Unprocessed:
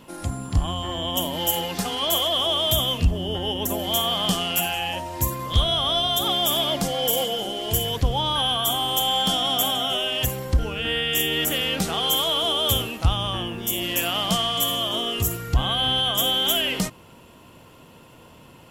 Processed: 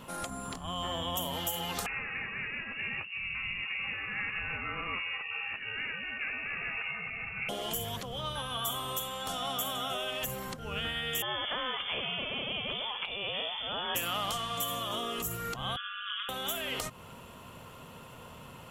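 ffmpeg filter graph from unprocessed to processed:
-filter_complex "[0:a]asettb=1/sr,asplit=3[a][b][c];[a]atrim=end=1.864[d];[b]atrim=start=1.86:end=7.49,asetpts=PTS-STARTPTS,afade=t=in:d=0.004:c=qsin,afade=t=out:st=5.626:d=0.004:c=qsin,asplit=2[e][f];[f]adelay=20,volume=-11dB[g];[e][g]amix=inputs=2:normalize=0,atrim=end_sample=248283,acompressor=threshold=-25dB:ratio=6:attack=3.2:release=140:knee=1:detection=peak,lowpass=f=2.5k:t=q:w=0.5098,lowpass=f=2.5k:t=q:w=0.6013,lowpass=f=2.5k:t=q:w=0.9,lowpass=f=2.5k:t=q:w=2.563,afreqshift=-2900[h];[c]atrim=start=7.486[i];[d][h]acrossfade=d=0.004:c1=hsin:c2=qsin[j];[j][i]acrossfade=d=0.004:c1=qsin:c2=hsin,asettb=1/sr,asplit=3[k][l][m];[k]atrim=end=11.224[n];[l]atrim=start=11.22:end=13.95,asetpts=PTS-STARTPTS,afade=t=in:d=0.004:c=qsin,afade=t=out:st=2.726:d=0.004:c=qsin,highpass=61,lowpass=f=3.1k:t=q:w=0.5098,lowpass=f=3.1k:t=q:w=0.6013,lowpass=f=3.1k:t=q:w=0.9,lowpass=f=3.1k:t=q:w=2.563,afreqshift=-3600[o];[m]atrim=start=13.946[p];[n][o]acrossfade=d=0.004:c1=hsin:c2=qsin[q];[q][p]acrossfade=d=0.004:c1=qsin:c2=hsin,asettb=1/sr,asplit=3[r][s][t];[r]atrim=end=15.764[u];[s]atrim=start=15.76:end=16.29,asetpts=PTS-STARTPTS,afade=t=in:d=0.004:c=qsin,afade=t=out:st=0.526:d=0.004:c=qsin,asuperpass=centerf=2000:order=20:qfactor=0.97,aecho=1:1:4.6:0.7,atrim=end_sample=23373,aeval=exprs='val(0)*sin(2*PI*100*n/s)':c=same[v];[t]atrim=start=16.286[w];[u][v]acrossfade=d=0.004:c1=hsin:c2=qsin[x];[x][w]acrossfade=d=0.004:c1=qsin:c2=hsin,acompressor=threshold=-29dB:ratio=6,afftfilt=real='re*lt(hypot(re,im),0.126)':imag='im*lt(hypot(re,im),0.126)':win_size=1024:overlap=0.75,equalizer=f=315:t=o:w=0.33:g=-10,equalizer=f=1.25k:t=o:w=0.33:g=6,equalizer=f=5k:t=o:w=0.33:g=-4"

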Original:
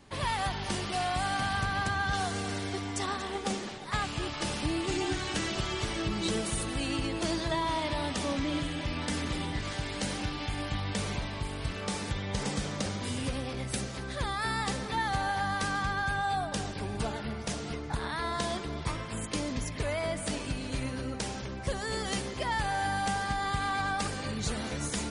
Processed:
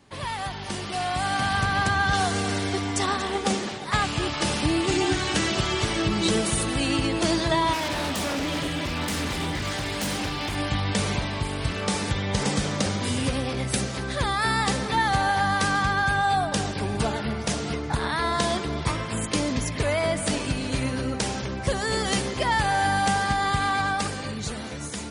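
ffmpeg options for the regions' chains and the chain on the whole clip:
-filter_complex "[0:a]asettb=1/sr,asplit=3[a][b][c];[a]atrim=end=7.734[d];[b]atrim=start=7.73:end=10.56,asetpts=PTS-STARTPTS,afade=t=in:d=0.004:c=qsin,afade=t=out:st=2.826:d=0.004:c=qsin,bandreject=f=60:t=h:w=6,bandreject=f=120:t=h:w=6,bandreject=f=180:t=h:w=6,bandreject=f=240:t=h:w=6,bandreject=f=300:t=h:w=6,bandreject=f=360:t=h:w=6,bandreject=f=420:t=h:w=6,bandreject=f=480:t=h:w=6,bandreject=f=540:t=h:w=6,bandreject=f=600:t=h:w=6,aeval=exprs='0.0316*(abs(mod(val(0)/0.0316+3,4)-2)-1)':c=same[e];[c]atrim=start=10.556[f];[d][e]acrossfade=d=0.004:c1=hsin:c2=qsin[g];[g][f]acrossfade=d=0.004:c1=qsin:c2=hsin,highpass=56,dynaudnorm=f=120:g=21:m=8dB"

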